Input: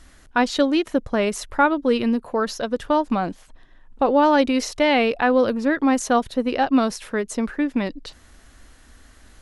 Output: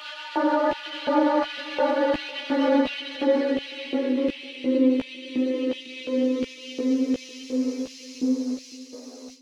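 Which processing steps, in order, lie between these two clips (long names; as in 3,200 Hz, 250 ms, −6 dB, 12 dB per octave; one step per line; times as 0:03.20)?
adaptive Wiener filter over 25 samples
Chebyshev high-pass filter 250 Hz, order 8
extreme stretch with random phases 24×, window 0.25 s, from 0:04.30
brickwall limiter −13.5 dBFS, peak gain reduction 8 dB
auto-filter high-pass square 1.4 Hz 350–2,700 Hz
noise gate −43 dBFS, range −17 dB
multi-voice chorus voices 4, 0.32 Hz, delay 14 ms, depth 2.4 ms
feedback echo with a low-pass in the loop 503 ms, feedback 35%, level −19.5 dB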